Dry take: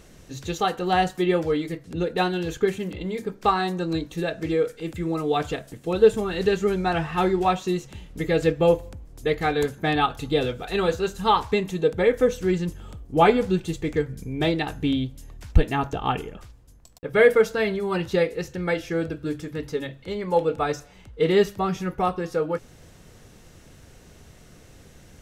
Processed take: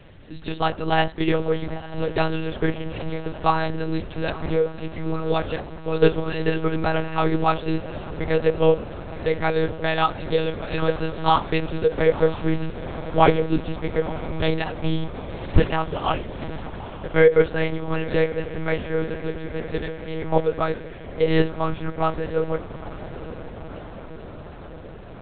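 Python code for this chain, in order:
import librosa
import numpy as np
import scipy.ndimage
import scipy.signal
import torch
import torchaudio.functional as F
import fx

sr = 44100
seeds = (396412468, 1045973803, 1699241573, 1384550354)

p1 = fx.hum_notches(x, sr, base_hz=50, count=8)
p2 = fx.add_hum(p1, sr, base_hz=50, snr_db=28)
p3 = fx.vibrato(p2, sr, rate_hz=1.1, depth_cents=25.0)
p4 = p3 + fx.echo_diffused(p3, sr, ms=945, feedback_pct=69, wet_db=-13.5, dry=0)
p5 = fx.lpc_monotone(p4, sr, seeds[0], pitch_hz=160.0, order=8)
y = p5 * librosa.db_to_amplitude(1.5)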